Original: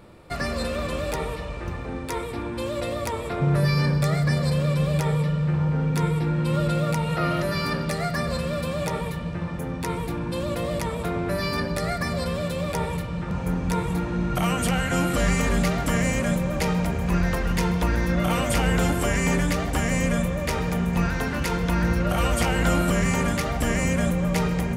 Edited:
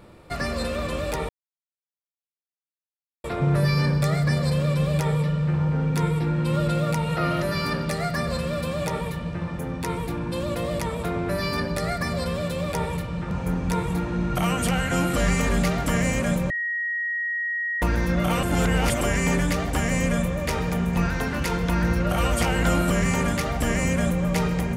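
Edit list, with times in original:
1.29–3.24 mute
16.5–17.82 bleep 1890 Hz -24 dBFS
18.43–19.01 reverse

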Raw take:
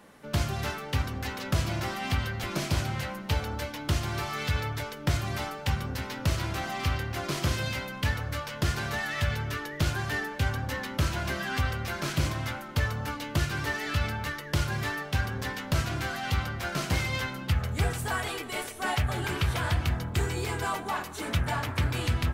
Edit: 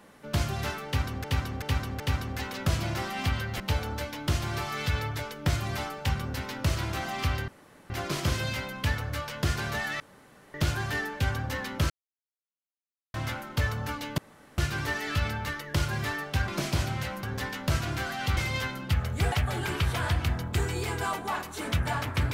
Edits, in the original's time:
0.86–1.24 loop, 4 plays
2.46–3.21 move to 15.27
7.09 insert room tone 0.42 s
9.19–9.73 room tone
11.09–12.33 mute
13.37 insert room tone 0.40 s
16.41–16.96 cut
17.91–18.93 cut

